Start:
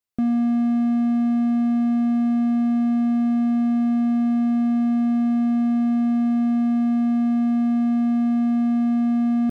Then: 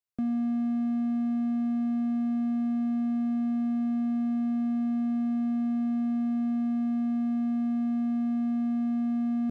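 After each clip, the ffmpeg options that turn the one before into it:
ffmpeg -i in.wav -filter_complex "[0:a]acrossover=split=360[link_01][link_02];[link_02]acompressor=threshold=-34dB:ratio=6[link_03];[link_01][link_03]amix=inputs=2:normalize=0,volume=-7.5dB" out.wav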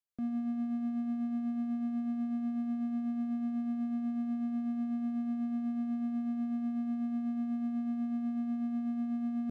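ffmpeg -i in.wav -af "tremolo=f=8.1:d=0.36,volume=-4.5dB" out.wav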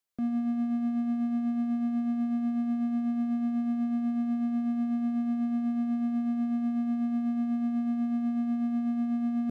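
ffmpeg -i in.wav -af "lowshelf=frequency=160:gain=-4.5,volume=6.5dB" out.wav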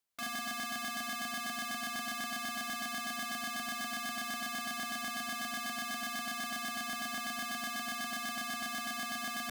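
ffmpeg -i in.wav -af "aeval=exprs='(mod(47.3*val(0)+1,2)-1)/47.3':channel_layout=same" out.wav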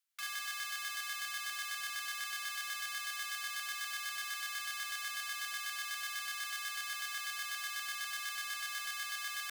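ffmpeg -i in.wav -af "highpass=frequency=1300:width=0.5412,highpass=frequency=1300:width=1.3066" out.wav

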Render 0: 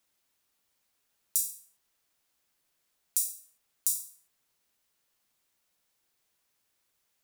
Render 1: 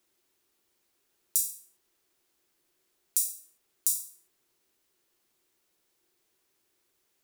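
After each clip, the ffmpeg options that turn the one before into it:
ffmpeg -i in.wav -af "equalizer=frequency=360:width=3.1:gain=14,volume=1.5dB" out.wav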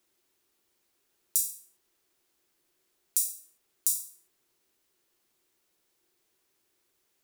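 ffmpeg -i in.wav -af anull out.wav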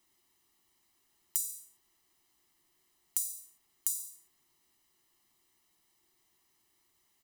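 ffmpeg -i in.wav -af "acompressor=threshold=-30dB:ratio=6,aecho=1:1:1:0.67" out.wav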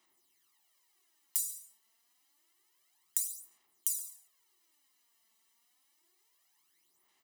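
ffmpeg -i in.wav -af "aphaser=in_gain=1:out_gain=1:delay=4.5:decay=0.63:speed=0.28:type=sinusoidal,highpass=frequency=580:poles=1,volume=-2dB" out.wav

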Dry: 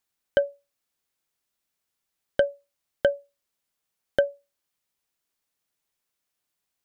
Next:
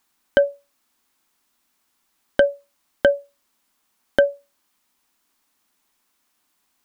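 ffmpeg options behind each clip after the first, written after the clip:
ffmpeg -i in.wav -af "equalizer=frequency=125:width_type=o:width=1:gain=-10,equalizer=frequency=250:width_type=o:width=1:gain=9,equalizer=frequency=500:width_type=o:width=1:gain=-5,equalizer=frequency=1000:width_type=o:width=1:gain=6,alimiter=level_in=12.5dB:limit=-1dB:release=50:level=0:latency=1,volume=-1dB" out.wav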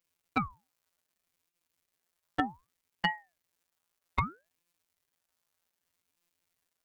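ffmpeg -i in.wav -af "afftfilt=real='hypot(re,im)*cos(PI*b)':imag='0':win_size=1024:overlap=0.75,aeval=exprs='val(0)*sin(2*PI*790*n/s+790*0.75/0.64*sin(2*PI*0.64*n/s))':channel_layout=same,volume=-5.5dB" out.wav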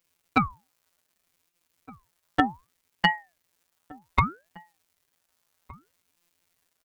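ffmpeg -i in.wav -filter_complex "[0:a]asplit=2[link_01][link_02];[link_02]adelay=1516,volume=-22dB,highshelf=frequency=4000:gain=-34.1[link_03];[link_01][link_03]amix=inputs=2:normalize=0,volume=8dB" out.wav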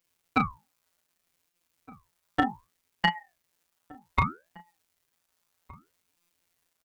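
ffmpeg -i in.wav -filter_complex "[0:a]asplit=2[link_01][link_02];[link_02]adelay=34,volume=-7.5dB[link_03];[link_01][link_03]amix=inputs=2:normalize=0,volume=-3dB" out.wav

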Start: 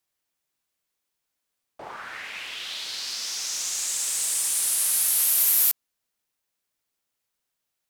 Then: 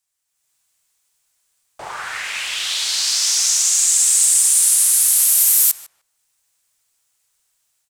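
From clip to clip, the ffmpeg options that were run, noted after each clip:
ffmpeg -i in.wav -filter_complex "[0:a]equalizer=frequency=250:width_type=o:width=1:gain=-11,equalizer=frequency=500:width_type=o:width=1:gain=-4,equalizer=frequency=8000:width_type=o:width=1:gain=10,dynaudnorm=framelen=260:gausssize=3:maxgain=10.5dB,asplit=2[link_01][link_02];[link_02]adelay=151,lowpass=frequency=1600:poles=1,volume=-9.5dB,asplit=2[link_03][link_04];[link_04]adelay=151,lowpass=frequency=1600:poles=1,volume=0.21,asplit=2[link_05][link_06];[link_06]adelay=151,lowpass=frequency=1600:poles=1,volume=0.21[link_07];[link_01][link_03][link_05][link_07]amix=inputs=4:normalize=0,volume=-1dB" out.wav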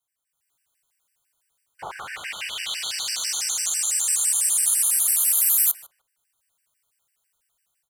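ffmpeg -i in.wav -filter_complex "[0:a]acrossover=split=190|870|2100[link_01][link_02][link_03][link_04];[link_03]alimiter=level_in=8dB:limit=-24dB:level=0:latency=1,volume=-8dB[link_05];[link_04]equalizer=frequency=5700:width=1:gain=-8[link_06];[link_01][link_02][link_05][link_06]amix=inputs=4:normalize=0,afftfilt=real='re*gt(sin(2*PI*6*pts/sr)*(1-2*mod(floor(b*sr/1024/1500),2)),0)':imag='im*gt(sin(2*PI*6*pts/sr)*(1-2*mod(floor(b*sr/1024/1500),2)),0)':win_size=1024:overlap=0.75" out.wav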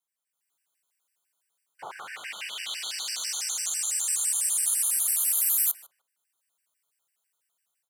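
ffmpeg -i in.wav -af "highpass=200,volume=-5dB" out.wav

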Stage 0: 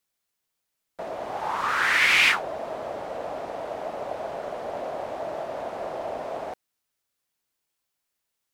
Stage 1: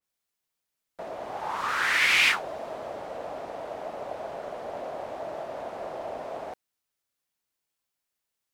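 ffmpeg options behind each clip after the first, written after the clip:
ffmpeg -i in.wav -af "adynamicequalizer=threshold=0.0251:dfrequency=2600:dqfactor=0.7:tfrequency=2600:tqfactor=0.7:attack=5:release=100:ratio=0.375:range=1.5:mode=boostabove:tftype=highshelf,volume=-3.5dB" out.wav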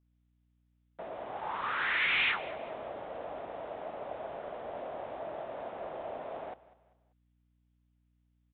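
ffmpeg -i in.wav -af "aresample=8000,asoftclip=type=tanh:threshold=-18dB,aresample=44100,aecho=1:1:196|392|588:0.112|0.0438|0.0171,aeval=exprs='val(0)+0.000501*(sin(2*PI*60*n/s)+sin(2*PI*2*60*n/s)/2+sin(2*PI*3*60*n/s)/3+sin(2*PI*4*60*n/s)/4+sin(2*PI*5*60*n/s)/5)':channel_layout=same,volume=-4.5dB" out.wav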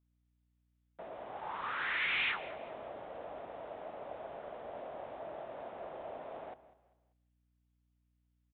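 ffmpeg -i in.wav -filter_complex "[0:a]asplit=2[link_01][link_02];[link_02]adelay=169,lowpass=frequency=1100:poles=1,volume=-16.5dB,asplit=2[link_03][link_04];[link_04]adelay=169,lowpass=frequency=1100:poles=1,volume=0.34,asplit=2[link_05][link_06];[link_06]adelay=169,lowpass=frequency=1100:poles=1,volume=0.34[link_07];[link_01][link_03][link_05][link_07]amix=inputs=4:normalize=0,volume=-4.5dB" out.wav

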